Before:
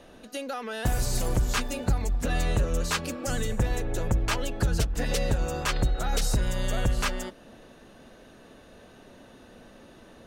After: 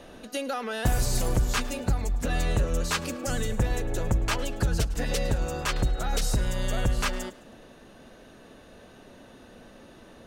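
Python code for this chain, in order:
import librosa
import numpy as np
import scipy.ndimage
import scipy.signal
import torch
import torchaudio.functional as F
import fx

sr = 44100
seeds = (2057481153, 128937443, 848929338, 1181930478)

p1 = fx.rider(x, sr, range_db=5, speed_s=2.0)
y = p1 + fx.echo_thinned(p1, sr, ms=106, feedback_pct=42, hz=420.0, wet_db=-19, dry=0)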